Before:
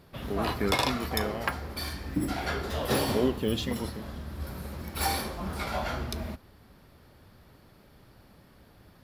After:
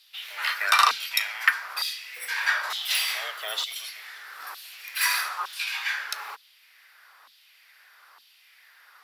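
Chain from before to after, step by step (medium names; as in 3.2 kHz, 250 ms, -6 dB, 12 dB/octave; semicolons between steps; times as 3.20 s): LFO high-pass saw down 1.1 Hz 890–3400 Hz; frequency shift +200 Hz; trim +5.5 dB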